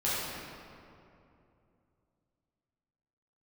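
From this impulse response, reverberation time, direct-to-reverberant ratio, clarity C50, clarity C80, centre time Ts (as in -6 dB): 2.7 s, -10.5 dB, -4.0 dB, -1.5 dB, 0.158 s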